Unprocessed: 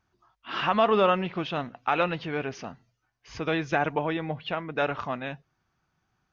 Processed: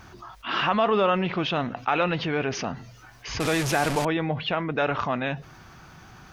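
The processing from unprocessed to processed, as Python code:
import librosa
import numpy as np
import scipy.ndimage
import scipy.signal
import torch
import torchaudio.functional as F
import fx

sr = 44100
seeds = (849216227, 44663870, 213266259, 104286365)

y = fx.delta_mod(x, sr, bps=64000, step_db=-26.0, at=(3.4, 4.05))
y = fx.env_flatten(y, sr, amount_pct=50)
y = F.gain(torch.from_numpy(y), -1.0).numpy()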